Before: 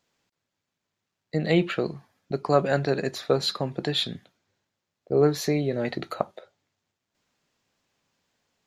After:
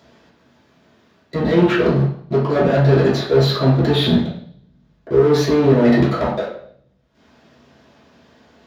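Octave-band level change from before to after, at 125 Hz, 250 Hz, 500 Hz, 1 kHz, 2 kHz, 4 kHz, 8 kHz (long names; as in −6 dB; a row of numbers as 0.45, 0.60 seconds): +13.5, +12.0, +9.5, +7.5, +8.0, +5.5, +2.0 decibels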